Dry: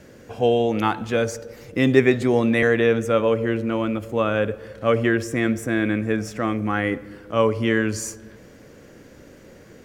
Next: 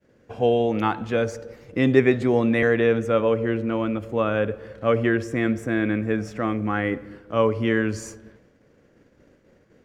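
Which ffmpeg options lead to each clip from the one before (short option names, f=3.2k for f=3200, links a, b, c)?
-af "lowpass=f=3k:p=1,agate=range=-33dB:threshold=-38dB:ratio=3:detection=peak,volume=-1dB"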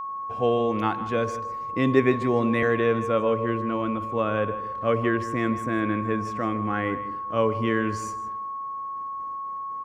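-filter_complex "[0:a]asplit=2[a][b];[b]adelay=157.4,volume=-14dB,highshelf=f=4k:g=-3.54[c];[a][c]amix=inputs=2:normalize=0,aeval=exprs='val(0)+0.0447*sin(2*PI*1100*n/s)':c=same,volume=-3dB"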